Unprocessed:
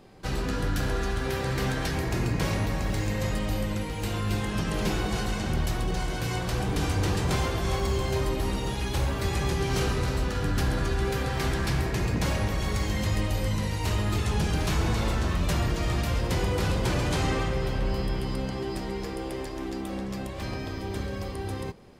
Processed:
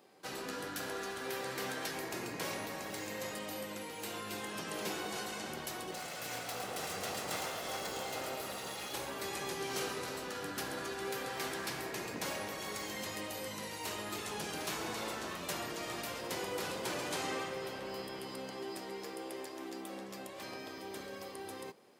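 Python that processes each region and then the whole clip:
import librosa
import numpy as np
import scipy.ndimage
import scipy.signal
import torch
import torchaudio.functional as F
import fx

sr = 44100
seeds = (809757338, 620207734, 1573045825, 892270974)

y = fx.chain(x, sr, fx.lower_of_two(delay_ms=1.5),
    fx.echo_single(ms=110, db=-6.5), at=(5.92, 8.93))
y = scipy.signal.sosfilt(scipy.signal.butter(2, 330.0, 'highpass', fs=sr, output='sos'), y)
y = fx.high_shelf(y, sr, hz=9500.0, db=9.5)
y = y * librosa.db_to_amplitude(-7.5)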